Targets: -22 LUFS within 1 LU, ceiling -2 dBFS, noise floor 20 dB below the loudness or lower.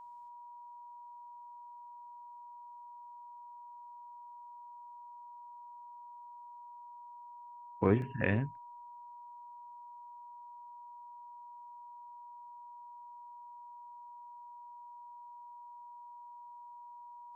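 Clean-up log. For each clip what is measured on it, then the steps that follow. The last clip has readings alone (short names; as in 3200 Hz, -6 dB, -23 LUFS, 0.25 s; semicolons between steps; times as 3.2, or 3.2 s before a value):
dropouts 1; longest dropout 1.2 ms; steady tone 960 Hz; tone level -48 dBFS; loudness -44.0 LUFS; peak -14.5 dBFS; loudness target -22.0 LUFS
-> interpolate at 8.02, 1.2 ms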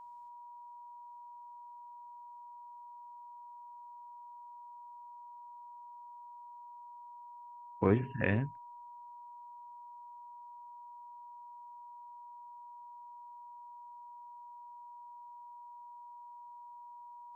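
dropouts 0; steady tone 960 Hz; tone level -48 dBFS
-> notch 960 Hz, Q 30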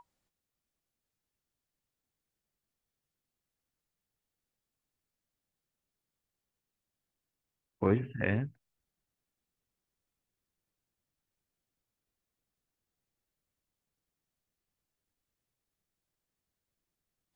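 steady tone none; loudness -32.5 LUFS; peak -14.0 dBFS; loudness target -22.0 LUFS
-> gain +10.5 dB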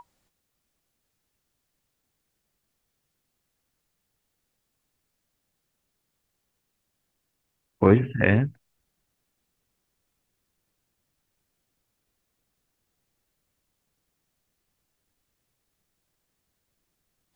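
loudness -22.0 LUFS; peak -3.5 dBFS; noise floor -79 dBFS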